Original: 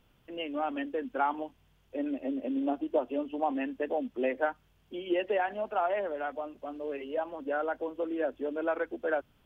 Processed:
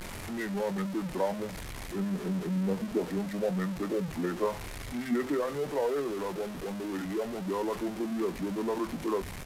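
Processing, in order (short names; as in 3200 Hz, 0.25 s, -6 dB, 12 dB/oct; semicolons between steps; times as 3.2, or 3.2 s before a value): zero-crossing step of -31 dBFS; pitch shift -6.5 st; doubler 21 ms -12 dB; gain -3 dB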